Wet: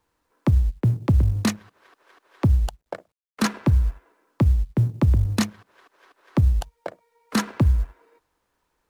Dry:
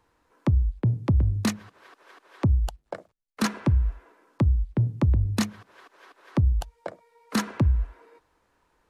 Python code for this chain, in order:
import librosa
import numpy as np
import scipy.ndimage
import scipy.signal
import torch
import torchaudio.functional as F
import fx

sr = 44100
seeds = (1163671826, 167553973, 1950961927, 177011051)

y = fx.law_mismatch(x, sr, coded='A')
y = y * 10.0 ** (3.5 / 20.0)